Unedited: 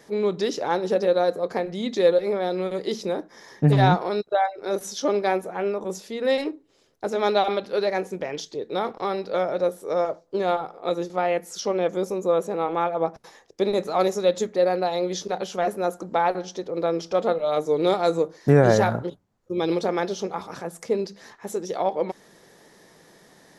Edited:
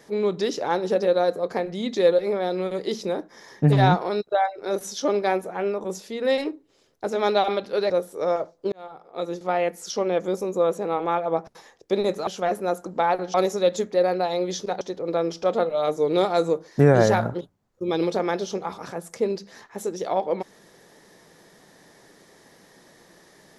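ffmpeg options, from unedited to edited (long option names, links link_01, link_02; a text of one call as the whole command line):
ffmpeg -i in.wav -filter_complex "[0:a]asplit=6[link_01][link_02][link_03][link_04][link_05][link_06];[link_01]atrim=end=7.902[link_07];[link_02]atrim=start=9.588:end=10.41,asetpts=PTS-STARTPTS,afade=type=out:start_time=0.818:duration=0.004:curve=hsin[link_08];[link_03]atrim=start=10.41:end=13.962,asetpts=PTS-STARTPTS,afade=type=in:duration=0.79[link_09];[link_04]atrim=start=15.428:end=16.502[link_10];[link_05]atrim=start=13.958:end=15.432[link_11];[link_06]atrim=start=16.498[link_12];[link_08][link_09]concat=n=2:v=0:a=1[link_13];[link_07][link_13]acrossfade=duration=0.004:curve1=hsin:curve2=hsin[link_14];[link_14][link_10]acrossfade=duration=0.004:curve1=hsin:curve2=hsin[link_15];[link_15][link_11]acrossfade=duration=0.004:curve1=hsin:curve2=hsin[link_16];[link_16][link_12]acrossfade=duration=0.004:curve1=hsin:curve2=hsin" out.wav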